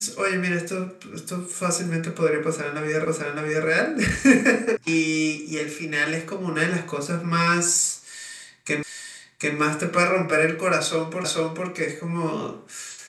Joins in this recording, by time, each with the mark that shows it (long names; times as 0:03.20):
0:03.05: the same again, the last 0.61 s
0:04.77: cut off before it has died away
0:08.83: the same again, the last 0.74 s
0:11.24: the same again, the last 0.44 s